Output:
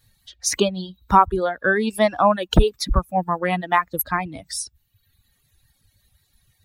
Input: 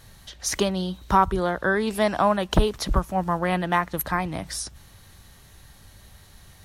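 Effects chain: expander on every frequency bin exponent 1.5; reverb removal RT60 0.92 s; trim +6 dB

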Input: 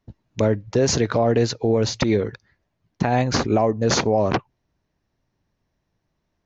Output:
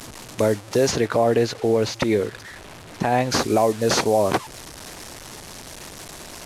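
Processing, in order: one-bit delta coder 64 kbps, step -33 dBFS; tone controls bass -7 dB, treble +6 dB, from 0.90 s treble -3 dB, from 3.30 s treble +6 dB; trim +1.5 dB

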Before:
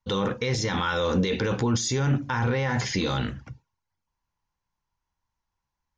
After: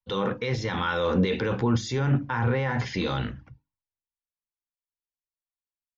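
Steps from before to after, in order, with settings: low-pass 3.5 kHz 12 dB/octave; hum notches 50/100/150/200/250/300 Hz; three bands expanded up and down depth 70%

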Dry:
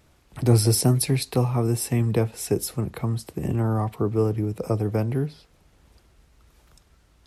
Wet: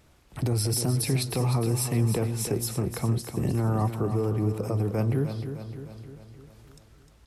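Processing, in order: peak limiter -18 dBFS, peak gain reduction 11 dB; feedback delay 305 ms, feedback 56%, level -9 dB

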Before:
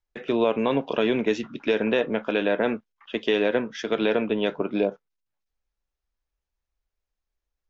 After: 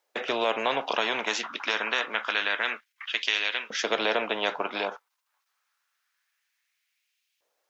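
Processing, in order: LFO high-pass saw up 0.27 Hz 510–2800 Hz; spectrum-flattening compressor 2:1

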